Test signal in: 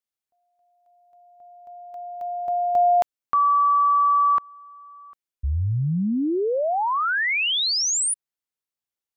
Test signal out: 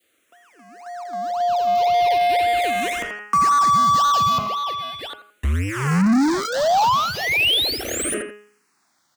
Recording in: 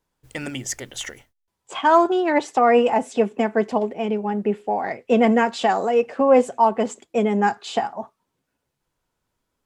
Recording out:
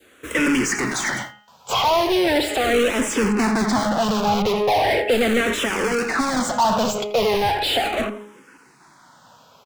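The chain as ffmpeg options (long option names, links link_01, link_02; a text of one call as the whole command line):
ffmpeg -i in.wav -filter_complex "[0:a]asplit=2[link_01][link_02];[link_02]acrusher=samples=33:mix=1:aa=0.000001:lfo=1:lforange=33:lforate=1.9,volume=-8dB[link_03];[link_01][link_03]amix=inputs=2:normalize=0,highpass=53,bandreject=frequency=208.4:width_type=h:width=4,bandreject=frequency=416.8:width_type=h:width=4,bandreject=frequency=625.2:width_type=h:width=4,bandreject=frequency=833.6:width_type=h:width=4,bandreject=frequency=1042:width_type=h:width=4,bandreject=frequency=1250.4:width_type=h:width=4,bandreject=frequency=1458.8:width_type=h:width=4,bandreject=frequency=1667.2:width_type=h:width=4,bandreject=frequency=1875.6:width_type=h:width=4,bandreject=frequency=2084:width_type=h:width=4,bandreject=frequency=2292.4:width_type=h:width=4,bandreject=frequency=2500.8:width_type=h:width=4,bandreject=frequency=2709.2:width_type=h:width=4,bandreject=frequency=2917.6:width_type=h:width=4,bandreject=frequency=3126:width_type=h:width=4,acrossover=split=190|3500[link_04][link_05][link_06];[link_04]acompressor=threshold=-24dB:ratio=4[link_07];[link_05]acompressor=threshold=-23dB:ratio=4[link_08];[link_06]acompressor=threshold=-32dB:ratio=4[link_09];[link_07][link_08][link_09]amix=inputs=3:normalize=0,adynamicequalizer=threshold=0.0112:dfrequency=1100:dqfactor=0.91:tfrequency=1100:tqfactor=0.91:attack=5:release=100:ratio=0.375:range=2:mode=cutabove:tftype=bell,asplit=2[link_10][link_11];[link_11]adelay=84,lowpass=frequency=3000:poles=1,volume=-19.5dB,asplit=2[link_12][link_13];[link_13]adelay=84,lowpass=frequency=3000:poles=1,volume=0.27[link_14];[link_12][link_14]amix=inputs=2:normalize=0[link_15];[link_10][link_15]amix=inputs=2:normalize=0,asplit=2[link_16][link_17];[link_17]highpass=frequency=720:poles=1,volume=36dB,asoftclip=type=tanh:threshold=-14.5dB[link_18];[link_16][link_18]amix=inputs=2:normalize=0,lowpass=frequency=3100:poles=1,volume=-6dB,asplit=2[link_19][link_20];[link_20]afreqshift=-0.38[link_21];[link_19][link_21]amix=inputs=2:normalize=1,volume=4.5dB" out.wav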